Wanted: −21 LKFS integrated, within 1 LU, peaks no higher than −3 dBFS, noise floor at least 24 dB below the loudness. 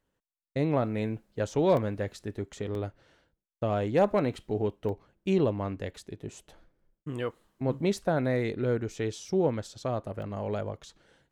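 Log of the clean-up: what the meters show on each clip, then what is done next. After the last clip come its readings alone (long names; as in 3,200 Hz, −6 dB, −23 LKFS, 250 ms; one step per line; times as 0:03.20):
number of dropouts 4; longest dropout 1.5 ms; integrated loudness −30.5 LKFS; sample peak −14.0 dBFS; target loudness −21.0 LKFS
→ repair the gap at 0:01.77/0:02.75/0:04.89/0:10.22, 1.5 ms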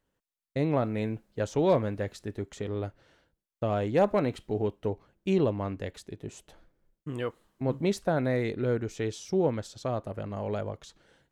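number of dropouts 0; integrated loudness −30.5 LKFS; sample peak −14.0 dBFS; target loudness −21.0 LKFS
→ level +9.5 dB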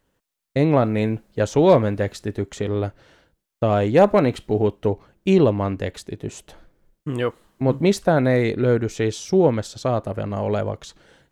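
integrated loudness −21.0 LKFS; sample peak −4.5 dBFS; background noise floor −79 dBFS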